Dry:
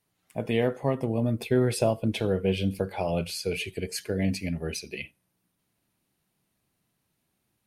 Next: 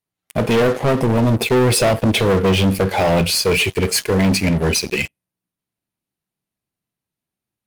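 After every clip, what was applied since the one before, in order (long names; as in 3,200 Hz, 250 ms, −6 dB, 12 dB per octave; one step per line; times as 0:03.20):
leveller curve on the samples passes 5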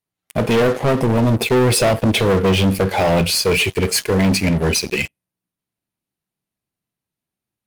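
no processing that can be heard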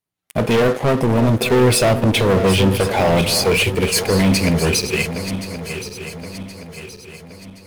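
feedback delay that plays each chunk backwards 536 ms, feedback 67%, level −10.5 dB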